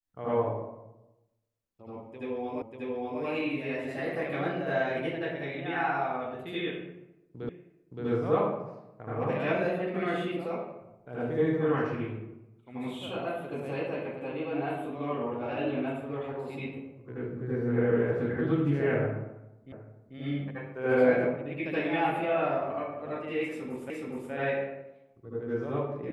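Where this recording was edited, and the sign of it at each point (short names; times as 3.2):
2.62 repeat of the last 0.59 s
7.49 repeat of the last 0.57 s
19.72 repeat of the last 0.44 s
23.9 repeat of the last 0.42 s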